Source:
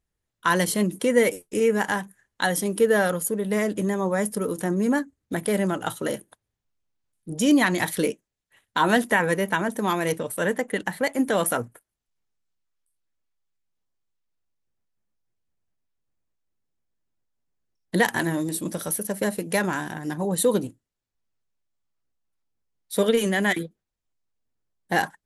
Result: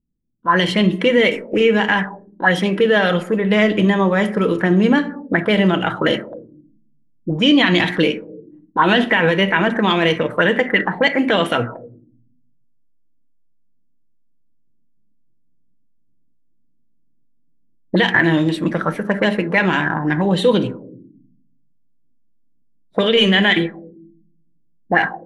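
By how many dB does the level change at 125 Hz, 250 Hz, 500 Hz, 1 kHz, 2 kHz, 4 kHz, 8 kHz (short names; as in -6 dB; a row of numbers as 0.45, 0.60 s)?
+9.5 dB, +8.0 dB, +6.5 dB, +7.0 dB, +9.5 dB, +13.5 dB, under -10 dB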